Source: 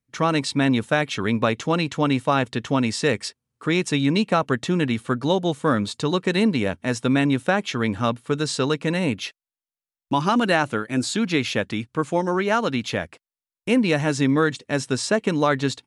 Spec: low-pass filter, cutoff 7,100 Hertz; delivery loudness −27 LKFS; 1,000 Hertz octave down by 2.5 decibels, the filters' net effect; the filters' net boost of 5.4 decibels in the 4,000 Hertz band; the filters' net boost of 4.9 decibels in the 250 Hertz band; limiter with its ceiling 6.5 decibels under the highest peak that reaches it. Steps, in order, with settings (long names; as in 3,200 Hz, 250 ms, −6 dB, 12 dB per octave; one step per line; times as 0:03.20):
low-pass filter 7,100 Hz
parametric band 250 Hz +6 dB
parametric band 1,000 Hz −4 dB
parametric band 4,000 Hz +7 dB
level −5 dB
brickwall limiter −16 dBFS